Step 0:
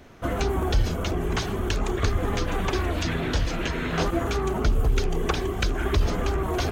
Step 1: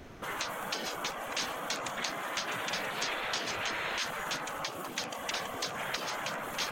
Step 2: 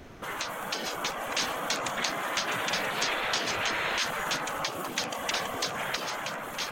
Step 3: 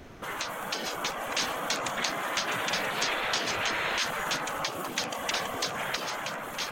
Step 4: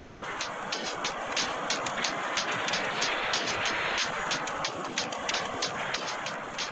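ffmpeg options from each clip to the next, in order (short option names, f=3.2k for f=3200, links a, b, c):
-af "afftfilt=real='re*lt(hypot(re,im),0.0891)':imag='im*lt(hypot(re,im),0.0891)':win_size=1024:overlap=0.75"
-af "dynaudnorm=f=210:g=9:m=3.5dB,volume=1.5dB"
-af anull
-af "aresample=16000,aresample=44100"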